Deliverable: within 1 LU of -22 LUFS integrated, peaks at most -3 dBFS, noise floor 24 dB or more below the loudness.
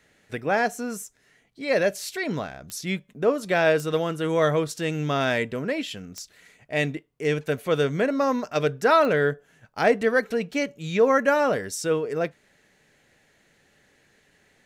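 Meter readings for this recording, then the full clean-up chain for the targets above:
clicks 4; loudness -24.5 LUFS; peak -8.5 dBFS; loudness target -22.0 LUFS
-> de-click; gain +2.5 dB

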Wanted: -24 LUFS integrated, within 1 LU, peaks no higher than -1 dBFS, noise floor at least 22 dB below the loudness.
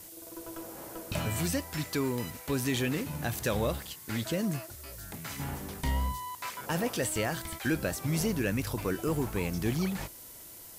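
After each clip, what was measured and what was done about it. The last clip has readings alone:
noise floor -48 dBFS; noise floor target -55 dBFS; loudness -33.0 LUFS; peak -17.0 dBFS; loudness target -24.0 LUFS
-> noise print and reduce 7 dB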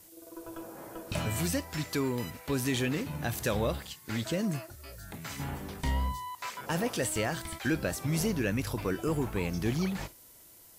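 noise floor -55 dBFS; loudness -32.5 LUFS; peak -17.0 dBFS; loudness target -24.0 LUFS
-> gain +8.5 dB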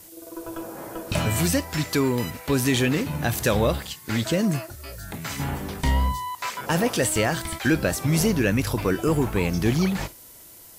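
loudness -24.0 LUFS; peak -8.5 dBFS; noise floor -47 dBFS

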